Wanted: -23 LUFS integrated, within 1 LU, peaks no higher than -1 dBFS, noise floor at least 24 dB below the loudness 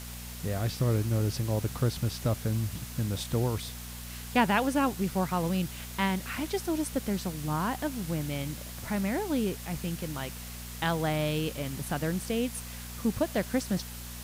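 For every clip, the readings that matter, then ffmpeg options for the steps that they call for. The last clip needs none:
hum 60 Hz; harmonics up to 240 Hz; hum level -40 dBFS; noise floor -41 dBFS; noise floor target -55 dBFS; loudness -31.0 LUFS; peak -11.5 dBFS; loudness target -23.0 LUFS
-> -af "bandreject=f=60:t=h:w=4,bandreject=f=120:t=h:w=4,bandreject=f=180:t=h:w=4,bandreject=f=240:t=h:w=4"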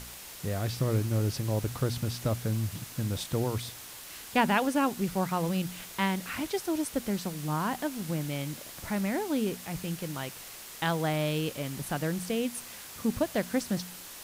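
hum none; noise floor -45 dBFS; noise floor target -56 dBFS
-> -af "afftdn=nr=11:nf=-45"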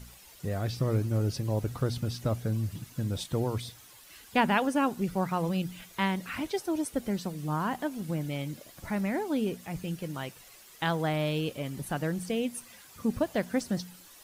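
noise floor -53 dBFS; noise floor target -56 dBFS
-> -af "afftdn=nr=6:nf=-53"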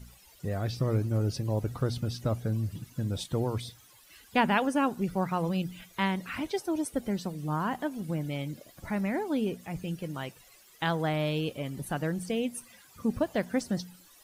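noise floor -58 dBFS; loudness -31.5 LUFS; peak -12.5 dBFS; loudness target -23.0 LUFS
-> -af "volume=8.5dB"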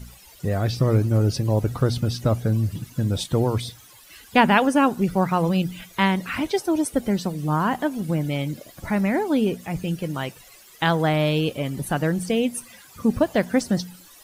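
loudness -23.0 LUFS; peak -4.0 dBFS; noise floor -49 dBFS

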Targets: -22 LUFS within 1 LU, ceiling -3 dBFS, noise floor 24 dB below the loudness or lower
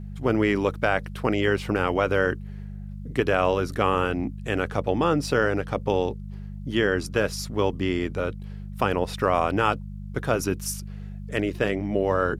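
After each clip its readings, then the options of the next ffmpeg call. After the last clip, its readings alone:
hum 50 Hz; harmonics up to 200 Hz; hum level -33 dBFS; loudness -25.0 LUFS; peak -7.0 dBFS; loudness target -22.0 LUFS
-> -af "bandreject=f=50:t=h:w=4,bandreject=f=100:t=h:w=4,bandreject=f=150:t=h:w=4,bandreject=f=200:t=h:w=4"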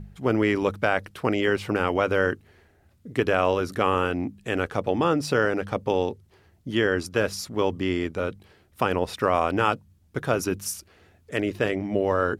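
hum none; loudness -25.5 LUFS; peak -7.0 dBFS; loudness target -22.0 LUFS
-> -af "volume=3.5dB"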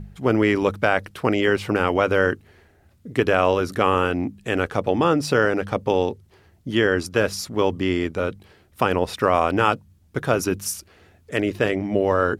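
loudness -22.0 LUFS; peak -3.5 dBFS; noise floor -57 dBFS

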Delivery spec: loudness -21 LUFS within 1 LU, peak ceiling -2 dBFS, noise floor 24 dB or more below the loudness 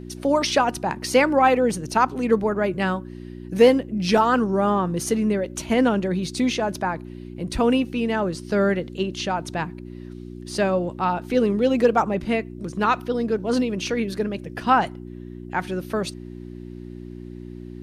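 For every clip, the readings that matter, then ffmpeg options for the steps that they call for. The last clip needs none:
hum 60 Hz; harmonics up to 360 Hz; hum level -34 dBFS; loudness -22.5 LUFS; peak -5.0 dBFS; loudness target -21.0 LUFS
-> -af "bandreject=f=60:t=h:w=4,bandreject=f=120:t=h:w=4,bandreject=f=180:t=h:w=4,bandreject=f=240:t=h:w=4,bandreject=f=300:t=h:w=4,bandreject=f=360:t=h:w=4"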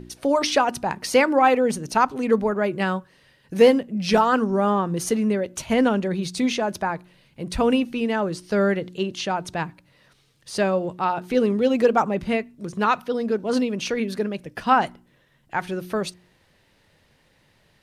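hum none; loudness -22.5 LUFS; peak -5.5 dBFS; loudness target -21.0 LUFS
-> -af "volume=1.5dB"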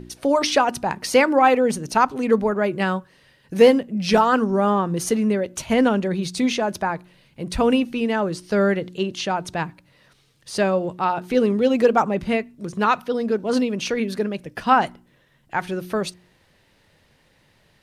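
loudness -21.0 LUFS; peak -4.0 dBFS; noise floor -60 dBFS

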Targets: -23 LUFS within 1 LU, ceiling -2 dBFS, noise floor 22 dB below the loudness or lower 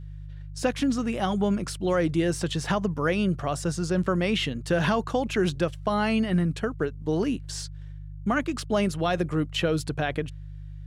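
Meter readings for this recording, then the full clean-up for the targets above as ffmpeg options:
hum 50 Hz; harmonics up to 150 Hz; hum level -36 dBFS; loudness -26.5 LUFS; peak -12.0 dBFS; loudness target -23.0 LUFS
-> -af "bandreject=f=50:t=h:w=4,bandreject=f=100:t=h:w=4,bandreject=f=150:t=h:w=4"
-af "volume=3.5dB"

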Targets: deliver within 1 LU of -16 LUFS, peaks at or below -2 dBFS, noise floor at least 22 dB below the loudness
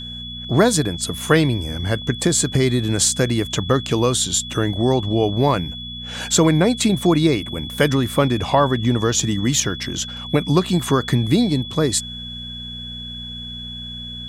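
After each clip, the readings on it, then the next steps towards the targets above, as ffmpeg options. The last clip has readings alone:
hum 60 Hz; harmonics up to 240 Hz; hum level -34 dBFS; steady tone 3400 Hz; tone level -31 dBFS; loudness -19.0 LUFS; peak -1.0 dBFS; loudness target -16.0 LUFS
-> -af "bandreject=f=60:t=h:w=4,bandreject=f=120:t=h:w=4,bandreject=f=180:t=h:w=4,bandreject=f=240:t=h:w=4"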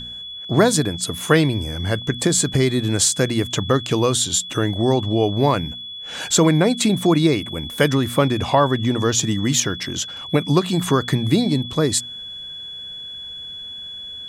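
hum none; steady tone 3400 Hz; tone level -31 dBFS
-> -af "bandreject=f=3.4k:w=30"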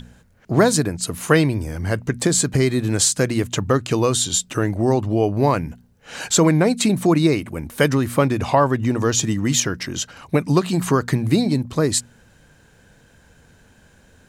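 steady tone none; loudness -19.5 LUFS; peak -1.5 dBFS; loudness target -16.0 LUFS
-> -af "volume=3.5dB,alimiter=limit=-2dB:level=0:latency=1"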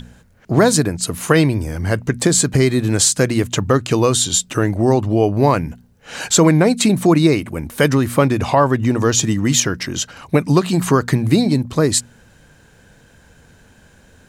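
loudness -16.0 LUFS; peak -2.0 dBFS; noise floor -50 dBFS

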